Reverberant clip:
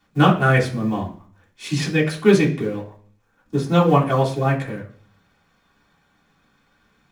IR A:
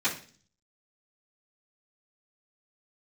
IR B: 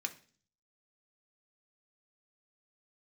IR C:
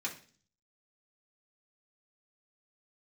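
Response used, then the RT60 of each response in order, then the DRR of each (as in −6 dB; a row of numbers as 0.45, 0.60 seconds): C; 0.40, 0.45, 0.40 seconds; −14.0, 3.5, −4.5 decibels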